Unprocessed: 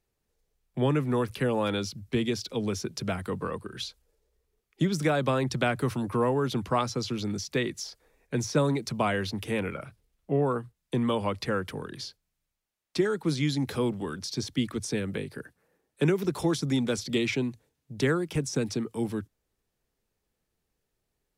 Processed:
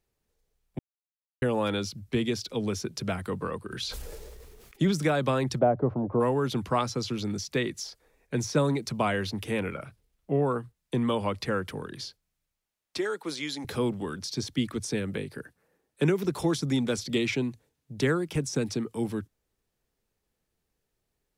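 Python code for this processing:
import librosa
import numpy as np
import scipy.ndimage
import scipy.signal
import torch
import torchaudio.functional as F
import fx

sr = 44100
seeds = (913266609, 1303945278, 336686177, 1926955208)

y = fx.sustainer(x, sr, db_per_s=24.0, at=(3.7, 4.91), fade=0.02)
y = fx.lowpass_res(y, sr, hz=660.0, q=2.4, at=(5.58, 6.19), fade=0.02)
y = fx.highpass(y, sr, hz=440.0, slope=12, at=(12.98, 13.65))
y = fx.edit(y, sr, fx.silence(start_s=0.79, length_s=0.63), tone=tone)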